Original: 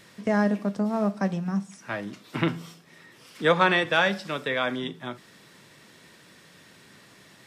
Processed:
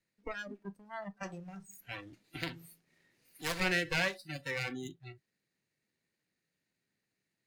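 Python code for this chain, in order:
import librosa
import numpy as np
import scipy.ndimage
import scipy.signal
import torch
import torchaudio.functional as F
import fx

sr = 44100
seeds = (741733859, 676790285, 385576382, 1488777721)

y = fx.lower_of_two(x, sr, delay_ms=0.46)
y = fx.noise_reduce_blind(y, sr, reduce_db=24)
y = fx.spectral_comp(y, sr, ratio=2.0, at=(1.23, 3.6))
y = F.gain(torch.from_numpy(y), -7.5).numpy()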